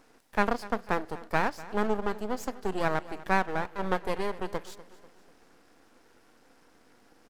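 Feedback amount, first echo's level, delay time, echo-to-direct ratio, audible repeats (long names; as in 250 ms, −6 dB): 48%, −18.0 dB, 246 ms, −17.0 dB, 3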